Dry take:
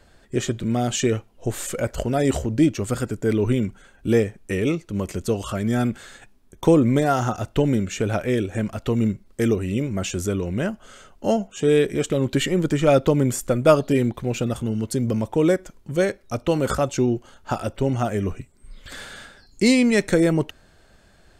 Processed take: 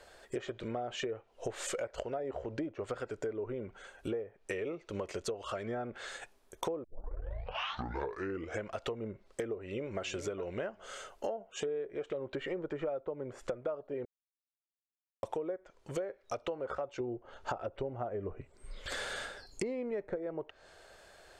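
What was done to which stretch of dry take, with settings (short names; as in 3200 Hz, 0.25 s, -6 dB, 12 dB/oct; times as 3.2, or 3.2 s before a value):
6.84 tape start 1.84 s
9.58–10.02 echo throw 0.41 s, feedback 20%, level -12.5 dB
14.05–15.23 mute
17–20.16 low shelf 390 Hz +8 dB
whole clip: treble ducked by the level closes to 1200 Hz, closed at -16.5 dBFS; resonant low shelf 330 Hz -12 dB, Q 1.5; compressor 12:1, threshold -34 dBFS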